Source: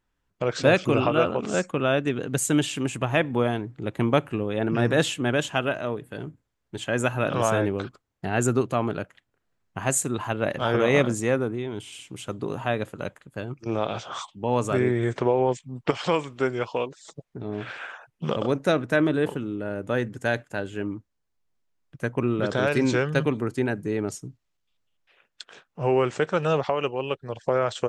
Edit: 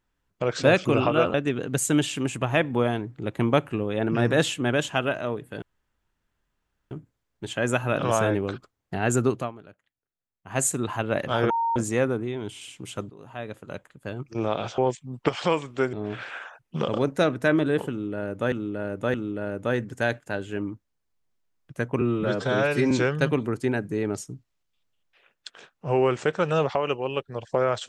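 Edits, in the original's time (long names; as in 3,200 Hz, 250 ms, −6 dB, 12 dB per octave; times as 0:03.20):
0:01.34–0:01.94: remove
0:06.22: splice in room tone 1.29 s
0:08.68–0:09.91: duck −18 dB, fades 0.15 s
0:10.81–0:11.07: beep over 922 Hz −21.5 dBFS
0:12.41–0:13.53: fade in, from −21.5 dB
0:14.09–0:15.40: remove
0:16.55–0:17.41: remove
0:19.38–0:20.00: repeat, 3 plays
0:22.25–0:22.85: time-stretch 1.5×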